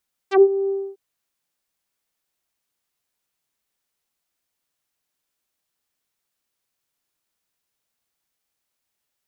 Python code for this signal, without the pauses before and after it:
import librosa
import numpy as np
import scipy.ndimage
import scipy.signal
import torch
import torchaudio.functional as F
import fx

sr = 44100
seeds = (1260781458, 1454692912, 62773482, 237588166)

y = fx.sub_voice(sr, note=67, wave='saw', cutoff_hz=450.0, q=1.1, env_oct=4.5, env_s=0.07, attack_ms=107.0, decay_s=0.06, sustain_db=-13.0, release_s=0.27, note_s=0.38, slope=24)